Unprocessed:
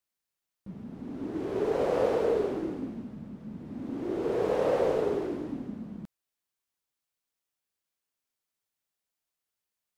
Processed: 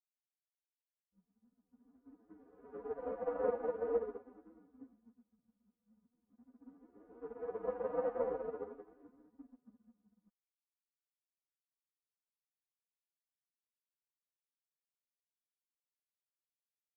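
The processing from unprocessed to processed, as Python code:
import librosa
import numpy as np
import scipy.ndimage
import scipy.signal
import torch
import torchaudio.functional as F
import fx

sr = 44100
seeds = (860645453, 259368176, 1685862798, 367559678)

y = x + 0.78 * np.pad(x, (int(4.1 * sr / 1000.0), 0))[:len(x)]
y = fx.stretch_vocoder(y, sr, factor=1.7)
y = fx.ladder_lowpass(y, sr, hz=1700.0, resonance_pct=35)
y = fx.upward_expand(y, sr, threshold_db=-49.0, expansion=2.5)
y = F.gain(torch.from_numpy(y), -2.0).numpy()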